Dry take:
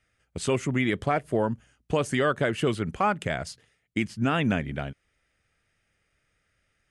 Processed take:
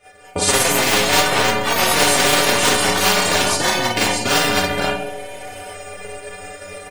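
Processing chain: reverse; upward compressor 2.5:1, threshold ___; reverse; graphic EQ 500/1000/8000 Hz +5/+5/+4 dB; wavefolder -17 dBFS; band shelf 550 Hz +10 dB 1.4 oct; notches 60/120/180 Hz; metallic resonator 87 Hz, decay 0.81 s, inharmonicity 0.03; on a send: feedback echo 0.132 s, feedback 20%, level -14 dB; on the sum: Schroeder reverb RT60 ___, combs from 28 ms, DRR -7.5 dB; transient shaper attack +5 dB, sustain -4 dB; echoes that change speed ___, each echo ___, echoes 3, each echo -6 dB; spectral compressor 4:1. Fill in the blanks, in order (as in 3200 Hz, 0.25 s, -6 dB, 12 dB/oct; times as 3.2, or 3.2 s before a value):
-46 dBFS, 0.32 s, 0.223 s, +4 st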